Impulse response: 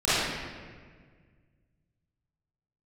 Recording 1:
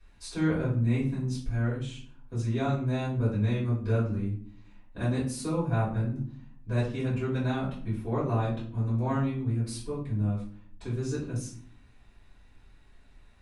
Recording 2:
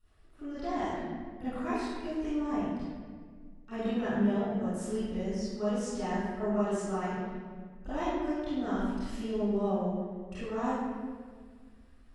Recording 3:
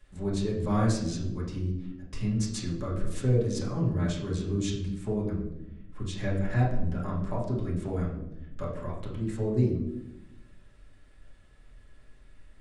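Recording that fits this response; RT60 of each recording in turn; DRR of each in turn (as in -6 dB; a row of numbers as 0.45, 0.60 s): 2; 0.55, 1.7, 0.85 s; -10.5, -15.5, -7.5 dB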